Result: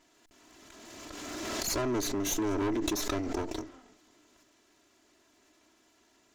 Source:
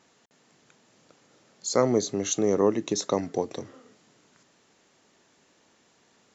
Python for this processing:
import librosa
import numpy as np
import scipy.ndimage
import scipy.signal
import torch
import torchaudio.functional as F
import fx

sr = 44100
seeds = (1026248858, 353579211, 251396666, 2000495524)

y = fx.lower_of_two(x, sr, delay_ms=3.0)
y = fx.peak_eq(y, sr, hz=310.0, db=5.0, octaves=0.26)
y = 10.0 ** (-24.0 / 20.0) * np.tanh(y / 10.0 ** (-24.0 / 20.0))
y = fx.pre_swell(y, sr, db_per_s=22.0)
y = y * librosa.db_to_amplitude(-2.0)